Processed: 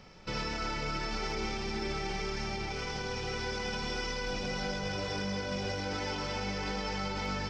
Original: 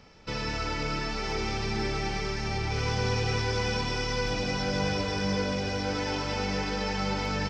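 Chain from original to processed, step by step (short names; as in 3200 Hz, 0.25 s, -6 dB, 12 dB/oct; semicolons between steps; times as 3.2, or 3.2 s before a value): limiter -26 dBFS, peak gain reduction 10 dB; reverb RT60 0.80 s, pre-delay 5 ms, DRR 8.5 dB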